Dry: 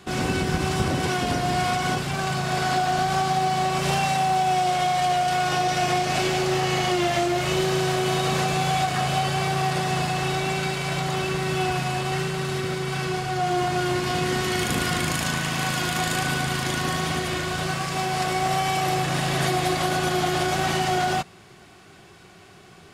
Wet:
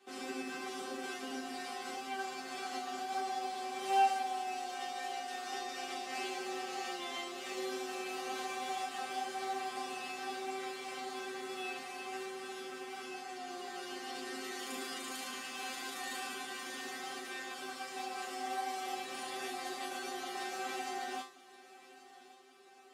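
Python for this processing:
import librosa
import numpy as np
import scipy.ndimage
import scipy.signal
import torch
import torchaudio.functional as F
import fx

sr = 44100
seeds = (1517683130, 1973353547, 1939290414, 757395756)

y = fx.octave_divider(x, sr, octaves=1, level_db=-5.0)
y = scipy.signal.sosfilt(scipy.signal.butter(4, 250.0, 'highpass', fs=sr, output='sos'), y)
y = fx.resonator_bank(y, sr, root=60, chord='fifth', decay_s=0.31)
y = fx.echo_feedback(y, sr, ms=1128, feedback_pct=50, wet_db=-19)
y = y * 10.0 ** (2.0 / 20.0)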